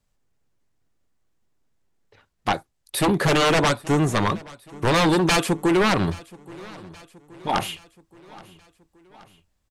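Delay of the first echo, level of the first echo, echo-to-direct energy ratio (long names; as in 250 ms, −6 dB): 825 ms, −22.0 dB, −20.5 dB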